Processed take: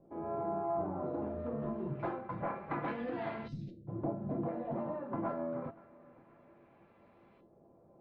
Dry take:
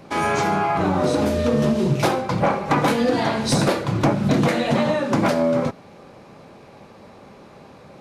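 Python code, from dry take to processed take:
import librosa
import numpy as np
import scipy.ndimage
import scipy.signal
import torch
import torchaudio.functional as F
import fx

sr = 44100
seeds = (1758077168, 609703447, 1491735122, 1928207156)

y = fx.air_absorb(x, sr, metres=220.0)
y = fx.echo_feedback(y, sr, ms=524, feedback_pct=48, wet_db=-23.0)
y = fx.filter_lfo_lowpass(y, sr, shape='saw_up', hz=0.27, low_hz=540.0, high_hz=3100.0, q=1.2)
y = fx.cheby1_bandstop(y, sr, low_hz=160.0, high_hz=7100.0, order=2, at=(3.47, 3.87), fade=0.02)
y = fx.comb_fb(y, sr, f0_hz=340.0, decay_s=0.25, harmonics='all', damping=0.0, mix_pct=80)
y = y * librosa.db_to_amplitude(-7.0)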